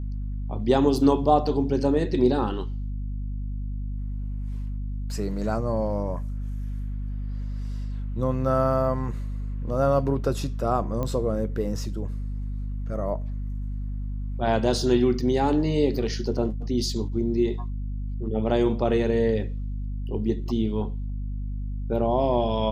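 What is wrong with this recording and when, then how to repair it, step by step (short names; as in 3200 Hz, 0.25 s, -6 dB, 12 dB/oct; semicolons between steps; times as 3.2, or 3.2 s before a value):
hum 50 Hz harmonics 5 -30 dBFS
11.03 pop -17 dBFS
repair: de-click; de-hum 50 Hz, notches 5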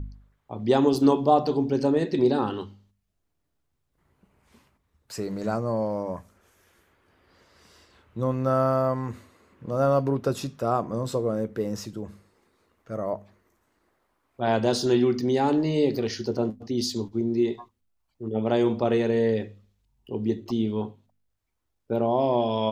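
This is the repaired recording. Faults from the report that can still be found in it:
none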